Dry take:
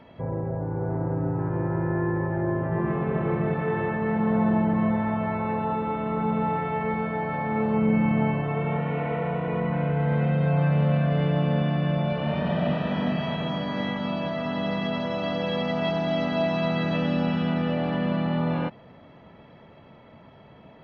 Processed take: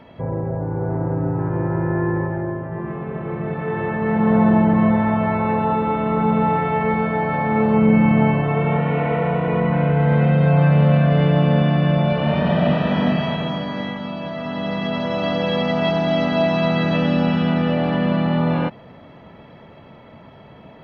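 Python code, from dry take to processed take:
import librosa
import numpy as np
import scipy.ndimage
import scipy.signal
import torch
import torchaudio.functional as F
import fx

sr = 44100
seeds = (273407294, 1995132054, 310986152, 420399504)

y = fx.gain(x, sr, db=fx.line((2.19, 5.0), (2.66, -2.0), (3.24, -2.0), (4.32, 7.5), (13.1, 7.5), (14.13, -0.5), (15.23, 6.5)))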